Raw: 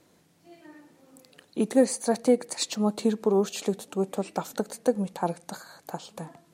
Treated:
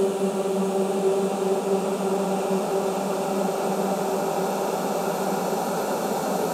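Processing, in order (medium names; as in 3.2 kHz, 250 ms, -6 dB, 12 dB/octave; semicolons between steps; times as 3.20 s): dynamic bell 210 Hz, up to -5 dB, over -36 dBFS, Q 2; Paulstretch 17×, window 1.00 s, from 4.05 s; trim +7.5 dB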